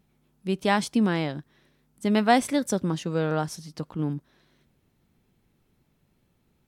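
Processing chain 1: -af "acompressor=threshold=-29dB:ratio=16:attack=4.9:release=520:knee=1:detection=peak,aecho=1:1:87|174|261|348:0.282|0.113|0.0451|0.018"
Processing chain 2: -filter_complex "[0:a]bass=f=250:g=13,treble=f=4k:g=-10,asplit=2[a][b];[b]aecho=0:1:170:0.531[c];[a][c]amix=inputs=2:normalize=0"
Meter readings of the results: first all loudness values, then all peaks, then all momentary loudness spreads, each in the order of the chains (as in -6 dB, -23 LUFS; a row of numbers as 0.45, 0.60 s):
-37.0, -19.5 LUFS; -22.0, -2.0 dBFS; 8, 14 LU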